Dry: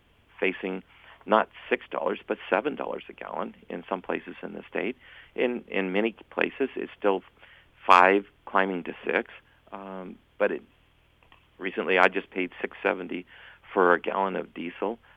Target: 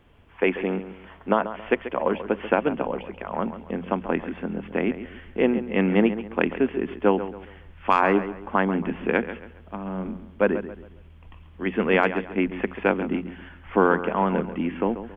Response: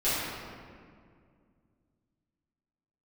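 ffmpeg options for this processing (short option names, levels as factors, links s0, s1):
-filter_complex "[0:a]highshelf=f=2100:g=-10.5,bandreject=f=60:t=h:w=6,bandreject=f=120:t=h:w=6,bandreject=f=180:t=h:w=6,asubboost=boost=3.5:cutoff=210,alimiter=limit=0.237:level=0:latency=1:release=384,asplit=2[s0][s1];[s1]adelay=137,lowpass=f=4000:p=1,volume=0.251,asplit=2[s2][s3];[s3]adelay=137,lowpass=f=4000:p=1,volume=0.35,asplit=2[s4][s5];[s5]adelay=137,lowpass=f=4000:p=1,volume=0.35,asplit=2[s6][s7];[s7]adelay=137,lowpass=f=4000:p=1,volume=0.35[s8];[s0][s2][s4][s6][s8]amix=inputs=5:normalize=0,volume=2.11"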